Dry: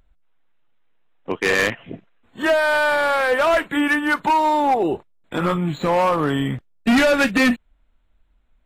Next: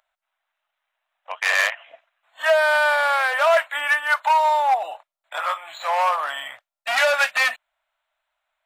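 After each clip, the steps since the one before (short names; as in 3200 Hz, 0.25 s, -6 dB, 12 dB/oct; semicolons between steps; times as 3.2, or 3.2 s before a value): elliptic high-pass 620 Hz, stop band 40 dB; gain +1 dB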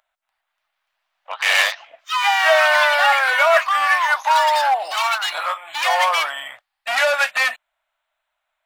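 echoes that change speed 0.291 s, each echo +4 st, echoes 3; gain +1 dB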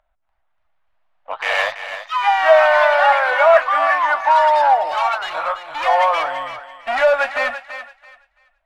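tilt -5.5 dB/oct; thinning echo 0.334 s, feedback 23%, high-pass 520 Hz, level -10 dB; gain +2 dB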